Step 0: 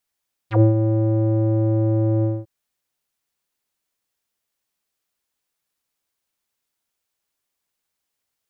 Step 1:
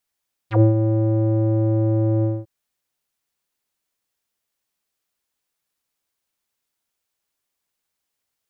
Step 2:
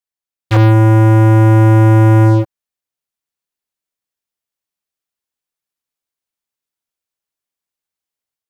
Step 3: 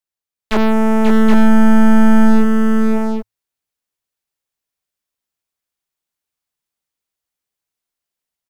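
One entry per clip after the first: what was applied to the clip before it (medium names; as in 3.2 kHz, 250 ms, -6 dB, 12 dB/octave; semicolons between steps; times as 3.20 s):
no audible change
waveshaping leveller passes 5; level rider gain up to 5.5 dB; trim -2.5 dB
frequency shift -110 Hz; multi-tap echo 537/774 ms -5.5/-4.5 dB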